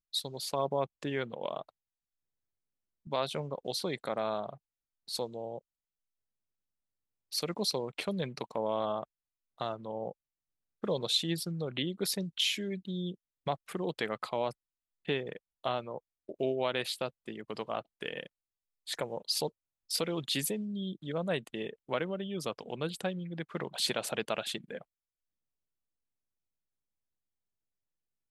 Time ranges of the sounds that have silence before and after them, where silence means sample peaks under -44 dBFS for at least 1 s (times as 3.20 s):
3.07–5.59 s
7.32–24.82 s